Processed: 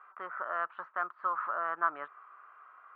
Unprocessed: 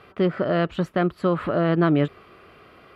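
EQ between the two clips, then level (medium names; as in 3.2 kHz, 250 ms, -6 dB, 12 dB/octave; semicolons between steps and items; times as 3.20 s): Butterworth band-pass 1.2 kHz, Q 2; 0.0 dB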